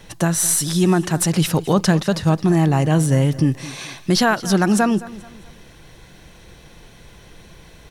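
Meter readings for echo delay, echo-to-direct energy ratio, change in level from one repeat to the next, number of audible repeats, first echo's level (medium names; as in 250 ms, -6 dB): 216 ms, -17.5 dB, -8.5 dB, 3, -18.0 dB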